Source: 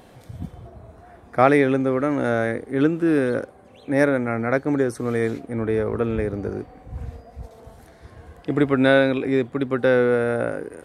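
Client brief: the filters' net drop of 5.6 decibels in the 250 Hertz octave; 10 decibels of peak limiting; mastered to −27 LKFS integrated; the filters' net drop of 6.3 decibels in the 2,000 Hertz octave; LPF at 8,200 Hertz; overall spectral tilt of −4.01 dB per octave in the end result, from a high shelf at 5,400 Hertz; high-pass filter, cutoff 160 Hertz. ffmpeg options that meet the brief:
ffmpeg -i in.wav -af "highpass=160,lowpass=8200,equalizer=frequency=250:width_type=o:gain=-6,equalizer=frequency=2000:width_type=o:gain=-8.5,highshelf=frequency=5400:gain=-5,alimiter=limit=-15.5dB:level=0:latency=1" out.wav

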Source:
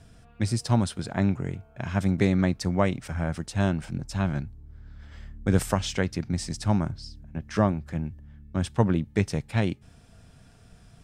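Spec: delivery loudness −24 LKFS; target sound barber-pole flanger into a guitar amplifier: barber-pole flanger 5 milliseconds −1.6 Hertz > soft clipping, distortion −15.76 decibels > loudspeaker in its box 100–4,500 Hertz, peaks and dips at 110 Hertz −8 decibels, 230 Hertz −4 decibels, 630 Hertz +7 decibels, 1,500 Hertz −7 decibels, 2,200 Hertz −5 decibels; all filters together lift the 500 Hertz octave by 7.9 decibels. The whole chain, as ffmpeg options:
ffmpeg -i in.wav -filter_complex "[0:a]equalizer=frequency=500:width_type=o:gain=6,asplit=2[link_01][link_02];[link_02]adelay=5,afreqshift=-1.6[link_03];[link_01][link_03]amix=inputs=2:normalize=1,asoftclip=threshold=-16.5dB,highpass=100,equalizer=frequency=110:width_type=q:width=4:gain=-8,equalizer=frequency=230:width_type=q:width=4:gain=-4,equalizer=frequency=630:width_type=q:width=4:gain=7,equalizer=frequency=1500:width_type=q:width=4:gain=-7,equalizer=frequency=2200:width_type=q:width=4:gain=-5,lowpass=frequency=4500:width=0.5412,lowpass=frequency=4500:width=1.3066,volume=7.5dB" out.wav

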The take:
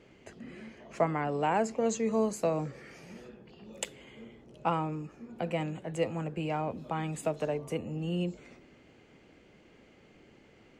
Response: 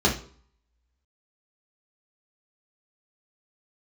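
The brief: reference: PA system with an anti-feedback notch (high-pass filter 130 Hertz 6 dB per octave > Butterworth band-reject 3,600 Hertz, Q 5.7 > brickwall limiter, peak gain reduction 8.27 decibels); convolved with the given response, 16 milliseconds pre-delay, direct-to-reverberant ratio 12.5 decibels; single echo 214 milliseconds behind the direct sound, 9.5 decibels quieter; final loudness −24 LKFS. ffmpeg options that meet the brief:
-filter_complex "[0:a]aecho=1:1:214:0.335,asplit=2[link_01][link_02];[1:a]atrim=start_sample=2205,adelay=16[link_03];[link_02][link_03]afir=irnorm=-1:irlink=0,volume=-28dB[link_04];[link_01][link_04]amix=inputs=2:normalize=0,highpass=frequency=130:poles=1,asuperstop=centerf=3600:order=8:qfactor=5.7,volume=11dB,alimiter=limit=-12.5dB:level=0:latency=1"

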